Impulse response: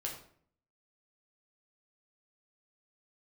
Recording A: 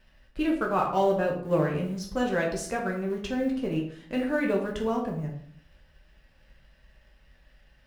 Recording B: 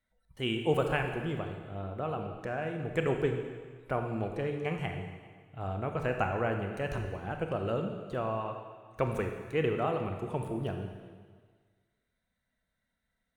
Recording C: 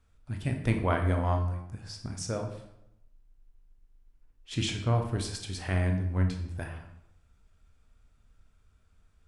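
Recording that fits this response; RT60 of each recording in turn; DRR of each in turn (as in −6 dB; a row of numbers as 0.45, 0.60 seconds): A; 0.55, 1.6, 0.85 seconds; −1.5, 4.0, 3.5 decibels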